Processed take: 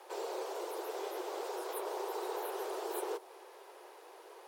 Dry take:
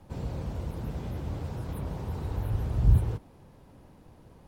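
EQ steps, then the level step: steep high-pass 360 Hz 96 dB/oct; bell 570 Hz -4.5 dB 0.52 oct; dynamic EQ 2100 Hz, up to -6 dB, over -59 dBFS, Q 0.74; +8.5 dB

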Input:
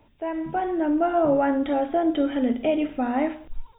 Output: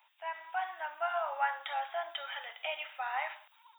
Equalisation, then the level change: steep high-pass 810 Hz 36 dB/oct; tilt +2 dB/oct; -2.5 dB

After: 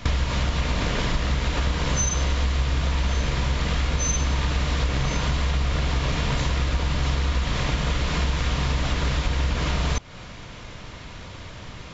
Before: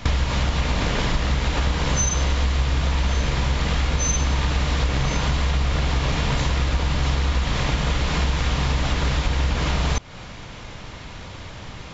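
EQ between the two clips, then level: notch 820 Hz, Q 12; -2.0 dB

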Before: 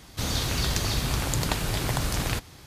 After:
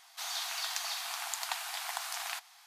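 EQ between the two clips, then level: brick-wall FIR high-pass 650 Hz; -6.0 dB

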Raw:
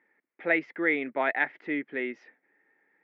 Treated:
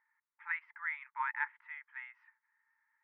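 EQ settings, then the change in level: brick-wall FIR high-pass 860 Hz; LPF 1100 Hz 12 dB/oct; 0.0 dB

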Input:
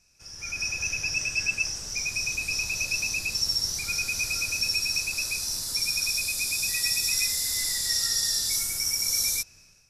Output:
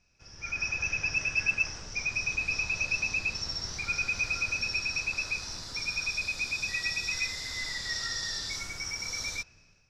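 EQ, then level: dynamic EQ 1400 Hz, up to +5 dB, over -42 dBFS, Q 0.71; air absorption 180 m; 0.0 dB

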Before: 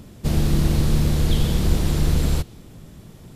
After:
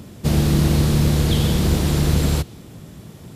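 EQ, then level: HPF 69 Hz; +4.5 dB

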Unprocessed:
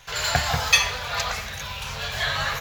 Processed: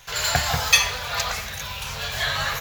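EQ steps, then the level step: high shelf 7900 Hz +8 dB; 0.0 dB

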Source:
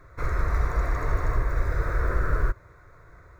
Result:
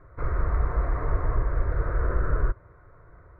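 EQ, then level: LPF 1300 Hz 12 dB/oct; 0.0 dB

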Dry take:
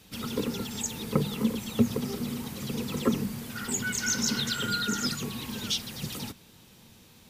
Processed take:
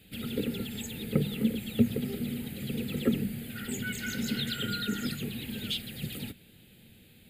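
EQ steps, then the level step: fixed phaser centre 2500 Hz, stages 4; 0.0 dB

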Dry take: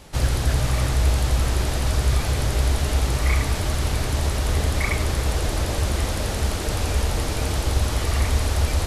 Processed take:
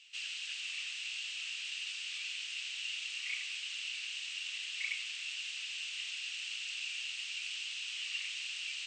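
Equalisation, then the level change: ladder high-pass 2600 Hz, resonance 80%; brick-wall FIR low-pass 8600 Hz; -1.5 dB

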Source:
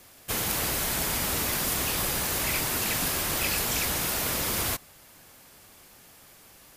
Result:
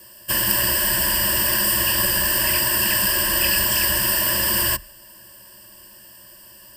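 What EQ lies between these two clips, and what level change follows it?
high shelf 6000 Hz +5.5 dB; dynamic EQ 1900 Hz, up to +5 dB, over -44 dBFS, Q 1; ripple EQ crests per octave 1.3, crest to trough 18 dB; 0.0 dB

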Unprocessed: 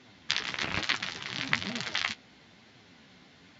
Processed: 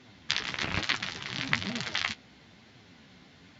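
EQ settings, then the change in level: low shelf 150 Hz +6.5 dB; 0.0 dB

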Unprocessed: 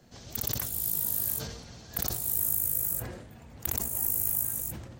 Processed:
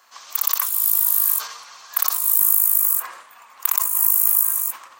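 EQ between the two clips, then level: resonant high-pass 1100 Hz, resonance Q 7.6; bell 2500 Hz +4 dB 0.72 oct; high shelf 6700 Hz +9 dB; +4.0 dB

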